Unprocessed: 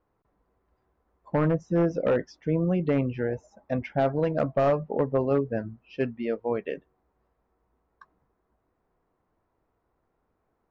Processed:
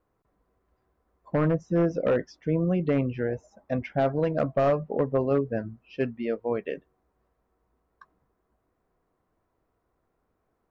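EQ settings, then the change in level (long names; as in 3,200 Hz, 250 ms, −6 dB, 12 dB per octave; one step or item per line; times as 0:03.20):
notch filter 870 Hz, Q 12
0.0 dB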